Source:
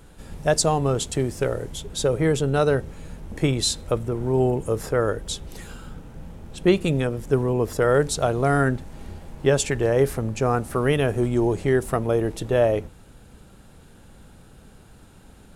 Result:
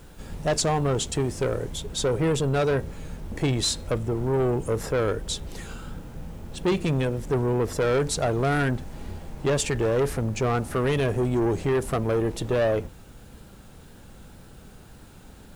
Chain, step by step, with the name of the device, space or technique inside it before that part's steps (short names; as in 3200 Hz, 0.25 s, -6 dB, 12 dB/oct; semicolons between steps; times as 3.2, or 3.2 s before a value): compact cassette (soft clip -20 dBFS, distortion -10 dB; LPF 10000 Hz 12 dB/oct; wow and flutter; white noise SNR 36 dB); gain +1.5 dB